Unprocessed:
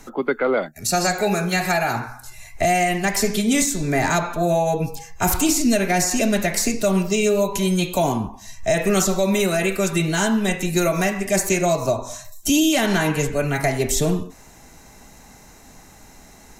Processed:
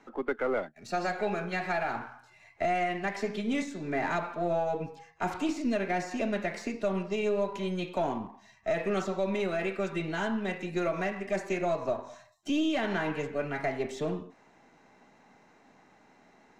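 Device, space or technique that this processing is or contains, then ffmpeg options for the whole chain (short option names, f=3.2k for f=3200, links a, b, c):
crystal radio: -af "highpass=210,lowpass=2.6k,aeval=exprs='if(lt(val(0),0),0.708*val(0),val(0))':c=same,volume=-8dB"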